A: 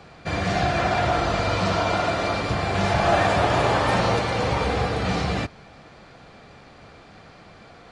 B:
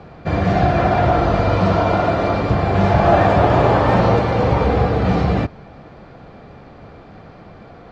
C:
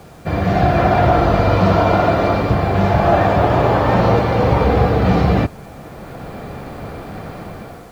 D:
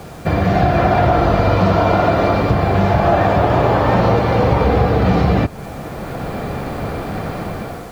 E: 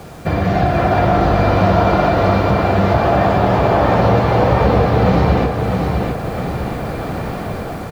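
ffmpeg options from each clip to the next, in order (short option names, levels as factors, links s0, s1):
-af "lowpass=5900,tiltshelf=f=1500:g=7,volume=1.26"
-af "dynaudnorm=f=230:g=5:m=3.55,acrusher=bits=7:mix=0:aa=0.000001,volume=0.891"
-af "acompressor=threshold=0.0794:ratio=2,volume=2.11"
-af "aecho=1:1:655|1310|1965|2620|3275:0.596|0.262|0.115|0.0507|0.0223,volume=0.891"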